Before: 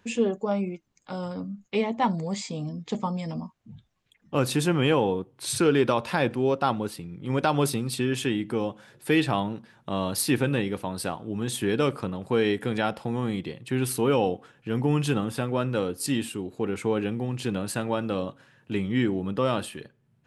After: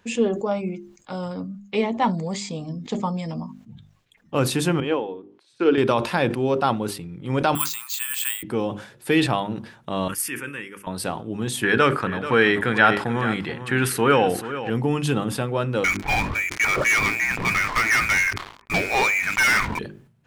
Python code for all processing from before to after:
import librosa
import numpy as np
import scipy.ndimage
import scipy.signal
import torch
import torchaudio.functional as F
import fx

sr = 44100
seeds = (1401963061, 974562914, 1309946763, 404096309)

y = fx.chain(x, sr, fx.lowpass(hz=4600.0, slope=12),
    fx.low_shelf_res(hz=200.0, db=-11.5, q=1.5),
    fx.upward_expand(threshold_db=-34.0, expansion=2.5), at=(4.8, 5.78))
y = fx.chain(y, sr, fx.ellip_highpass(hz=1000.0, order=4, stop_db=80),
    fx.high_shelf(hz=9500.0, db=-2.5),
    fx.resample_bad(factor=4, down='filtered', up='zero_stuff'), at=(7.55, 8.43))
y = fx.chain(y, sr, fx.highpass(hz=1200.0, slope=6),
    fx.fixed_phaser(hz=1700.0, stages=4), at=(10.08, 10.87))
y = fx.chain(y, sr, fx.peak_eq(hz=1600.0, db=14.0, octaves=1.1),
    fx.echo_single(ms=434, db=-12.5), at=(11.63, 14.7))
y = fx.chain(y, sr, fx.highpass(hz=730.0, slope=12),
    fx.freq_invert(carrier_hz=2700),
    fx.leveller(passes=5), at=(15.84, 19.79))
y = fx.hum_notches(y, sr, base_hz=50, count=8)
y = fx.sustainer(y, sr, db_per_s=100.0)
y = y * 10.0 ** (3.0 / 20.0)